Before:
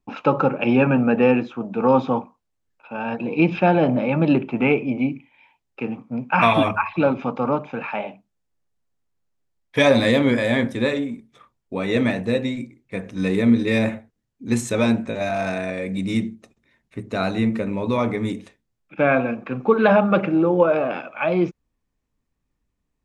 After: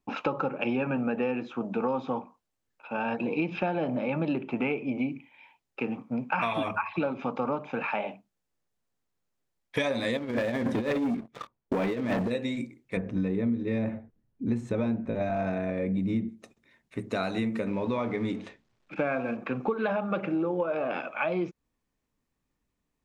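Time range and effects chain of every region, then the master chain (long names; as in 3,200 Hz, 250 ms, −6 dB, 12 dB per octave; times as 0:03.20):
0:10.17–0:12.31: low-pass filter 1,200 Hz 6 dB per octave + compressor whose output falls as the input rises −26 dBFS, ratio −0.5 + leveller curve on the samples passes 3
0:12.97–0:16.29: low-pass filter 3,200 Hz 6 dB per octave + spectral tilt −3 dB per octave
0:17.67–0:19.37: mu-law and A-law mismatch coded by mu + high-frequency loss of the air 120 metres
whole clip: low-shelf EQ 120 Hz −8.5 dB; downward compressor 6 to 1, threshold −26 dBFS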